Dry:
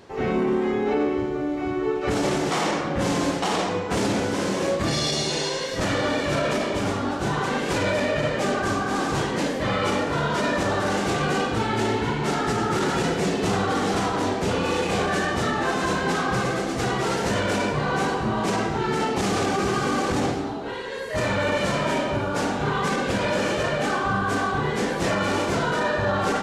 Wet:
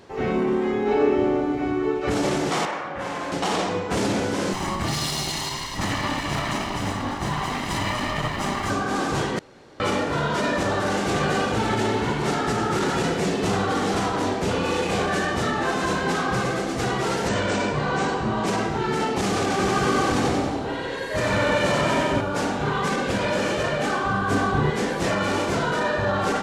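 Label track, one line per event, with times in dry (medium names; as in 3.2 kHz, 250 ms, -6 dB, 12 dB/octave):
0.810000	1.450000	reverb throw, RT60 2.6 s, DRR 0 dB
2.650000	3.320000	three-band isolator lows -13 dB, under 600 Hz, highs -12 dB, over 2.6 kHz
4.530000	8.700000	comb filter that takes the minimum delay 1 ms
9.390000	9.800000	room tone
10.570000	11.180000	echo throw 560 ms, feedback 65%, level -6.5 dB
17.280000	18.460000	brick-wall FIR low-pass 8.9 kHz
19.410000	22.210000	two-band feedback delay split 720 Hz, lows 177 ms, highs 93 ms, level -3 dB
24.300000	24.700000	bass shelf 330 Hz +7 dB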